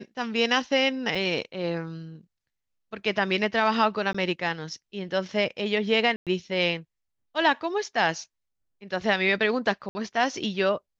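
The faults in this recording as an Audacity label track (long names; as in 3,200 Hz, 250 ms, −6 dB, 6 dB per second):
1.150000	1.150000	drop-out 4.7 ms
4.130000	4.140000	drop-out 15 ms
6.160000	6.270000	drop-out 107 ms
9.890000	9.950000	drop-out 60 ms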